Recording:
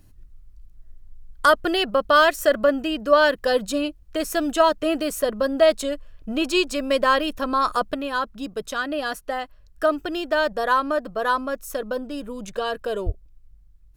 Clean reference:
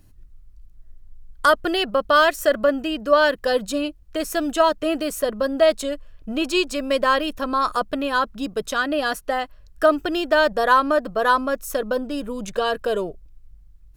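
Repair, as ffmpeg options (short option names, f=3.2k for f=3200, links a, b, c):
-filter_complex "[0:a]asplit=3[a][b][c];[a]afade=t=out:st=13.05:d=0.02[d];[b]highpass=f=140:w=0.5412,highpass=f=140:w=1.3066,afade=t=in:st=13.05:d=0.02,afade=t=out:st=13.17:d=0.02[e];[c]afade=t=in:st=13.17:d=0.02[f];[d][e][f]amix=inputs=3:normalize=0,asetnsamples=n=441:p=0,asendcmd='7.94 volume volume 4dB',volume=0dB"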